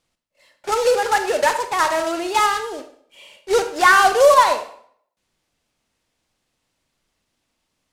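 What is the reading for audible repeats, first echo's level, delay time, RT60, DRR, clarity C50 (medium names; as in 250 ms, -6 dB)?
no echo, no echo, no echo, 0.60 s, 7.5 dB, 10.0 dB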